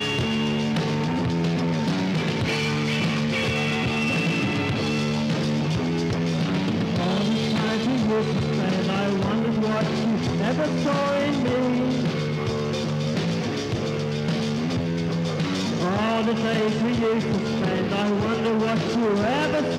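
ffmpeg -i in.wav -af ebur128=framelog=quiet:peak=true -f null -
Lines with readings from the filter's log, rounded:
Integrated loudness:
  I:         -23.6 LUFS
  Threshold: -33.6 LUFS
Loudness range:
  LRA:         1.9 LU
  Threshold: -43.6 LUFS
  LRA low:   -24.9 LUFS
  LRA high:  -23.0 LUFS
True peak:
  Peak:      -13.6 dBFS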